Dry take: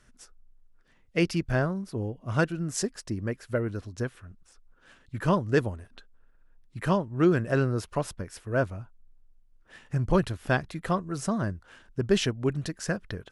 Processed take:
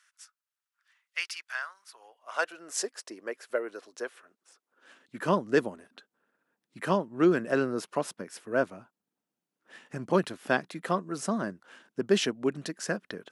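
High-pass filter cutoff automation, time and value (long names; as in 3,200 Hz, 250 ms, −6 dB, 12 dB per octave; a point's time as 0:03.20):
high-pass filter 24 dB per octave
0:01.78 1,200 Hz
0:02.77 400 Hz
0:04.17 400 Hz
0:05.27 200 Hz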